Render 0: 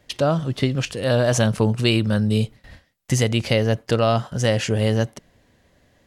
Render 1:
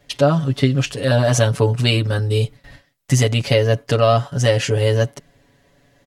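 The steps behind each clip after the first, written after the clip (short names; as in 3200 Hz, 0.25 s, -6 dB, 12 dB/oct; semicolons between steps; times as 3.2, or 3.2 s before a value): comb 7.1 ms, depth 96%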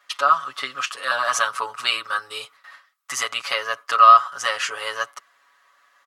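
resonant high-pass 1200 Hz, resonance Q 9.5; gain -3 dB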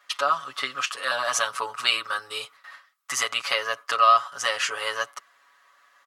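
dynamic EQ 1300 Hz, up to -7 dB, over -28 dBFS, Q 1.5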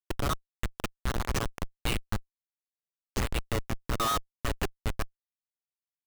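Schmitt trigger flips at -18.5 dBFS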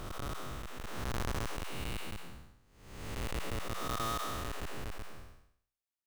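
time blur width 0.475 s; gain +1 dB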